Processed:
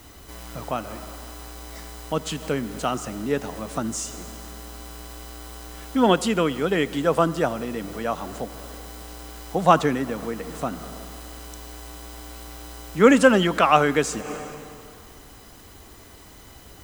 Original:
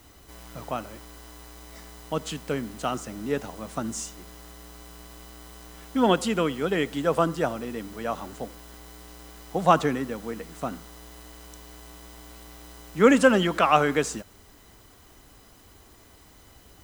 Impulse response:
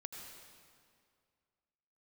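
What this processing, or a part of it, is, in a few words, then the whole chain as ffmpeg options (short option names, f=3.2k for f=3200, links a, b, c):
ducked reverb: -filter_complex "[0:a]asplit=3[a][b][c];[1:a]atrim=start_sample=2205[d];[b][d]afir=irnorm=-1:irlink=0[e];[c]apad=whole_len=742509[f];[e][f]sidechaincompress=threshold=-40dB:ratio=8:attack=6:release=134,volume=0dB[g];[a][g]amix=inputs=2:normalize=0,volume=2.5dB"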